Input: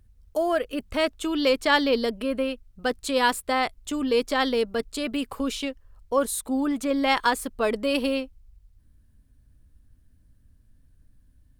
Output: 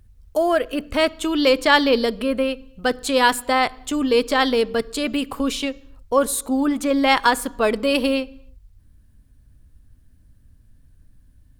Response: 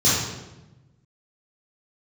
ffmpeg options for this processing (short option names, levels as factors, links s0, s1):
-filter_complex "[0:a]asplit=2[s0][s1];[1:a]atrim=start_sample=2205,afade=t=out:st=0.36:d=0.01,atrim=end_sample=16317,highshelf=f=4900:g=-5.5[s2];[s1][s2]afir=irnorm=-1:irlink=0,volume=0.0126[s3];[s0][s3]amix=inputs=2:normalize=0,volume=1.88"